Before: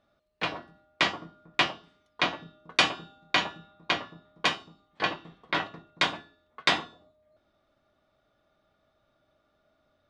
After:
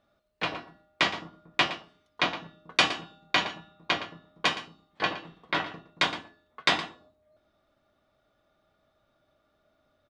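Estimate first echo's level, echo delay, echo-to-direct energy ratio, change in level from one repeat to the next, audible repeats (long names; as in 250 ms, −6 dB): −14.0 dB, 116 ms, −14.0 dB, repeats not evenly spaced, 1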